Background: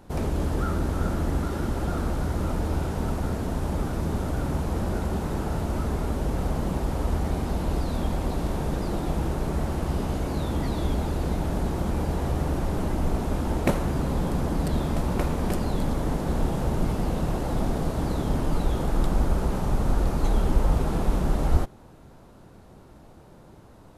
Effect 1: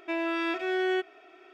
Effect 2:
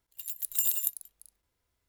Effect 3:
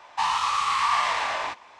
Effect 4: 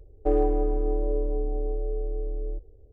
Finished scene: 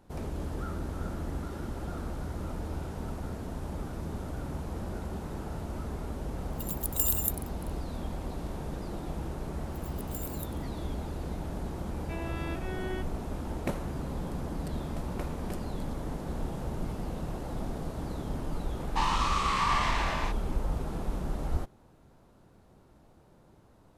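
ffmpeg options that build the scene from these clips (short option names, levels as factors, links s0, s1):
-filter_complex "[2:a]asplit=2[s0][s1];[0:a]volume=0.335[s2];[s0]atrim=end=1.88,asetpts=PTS-STARTPTS,volume=0.944,afade=t=in:d=0.004:c=hsin,afade=t=out:st=1.876:d=0.004:c=hsin,adelay=6410[s3];[s1]atrim=end=1.88,asetpts=PTS-STARTPTS,volume=0.178,afade=t=in:d=0.004:c=hsin,afade=t=out:st=1.876:d=0.004:c=hsin,adelay=9560[s4];[1:a]atrim=end=1.53,asetpts=PTS-STARTPTS,volume=0.282,afade=t=in:d=0.004:c=hsin,afade=t=out:st=1.526:d=0.004:c=hsin,adelay=12010[s5];[3:a]atrim=end=1.79,asetpts=PTS-STARTPTS,volume=0.562,afade=t=in:d=0.004:c=hsin,afade=t=out:st=1.786:d=0.004:c=hsin,adelay=18780[s6];[s2][s3][s4][s5][s6]amix=inputs=5:normalize=0"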